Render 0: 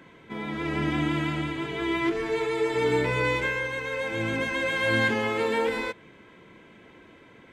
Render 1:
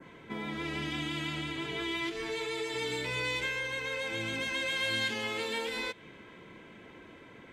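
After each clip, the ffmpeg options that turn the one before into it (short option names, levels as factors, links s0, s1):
-filter_complex "[0:a]adynamicequalizer=threshold=0.01:dfrequency=3500:dqfactor=1:tfrequency=3500:tqfactor=1:attack=5:release=100:ratio=0.375:range=2:mode=boostabove:tftype=bell,acrossover=split=2900[s0][s1];[s0]acompressor=threshold=0.0178:ratio=6[s2];[s2][s1]amix=inputs=2:normalize=0"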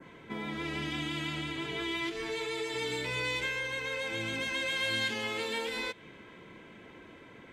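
-af anull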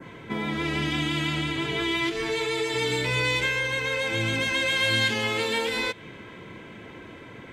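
-af "equalizer=f=110:t=o:w=0.7:g=6,volume=2.51"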